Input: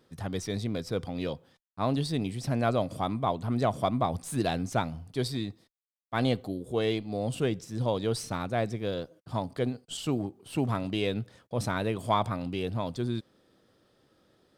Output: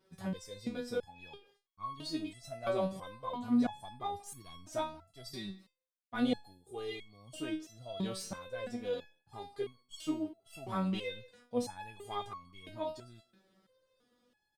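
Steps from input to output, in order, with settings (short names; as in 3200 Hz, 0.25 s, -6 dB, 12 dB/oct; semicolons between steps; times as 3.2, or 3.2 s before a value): speakerphone echo 0.18 s, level -21 dB; stepped resonator 3 Hz 190–1100 Hz; gain +7.5 dB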